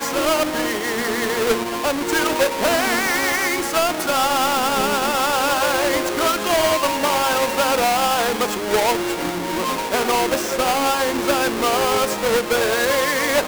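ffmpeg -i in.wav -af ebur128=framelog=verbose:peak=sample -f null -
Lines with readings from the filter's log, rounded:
Integrated loudness:
  I:         -19.0 LUFS
  Threshold: -29.0 LUFS
Loudness range:
  LRA:         1.5 LU
  Threshold: -38.9 LUFS
  LRA low:   -19.8 LUFS
  LRA high:  -18.3 LUFS
Sample peak:
  Peak:      -10.1 dBFS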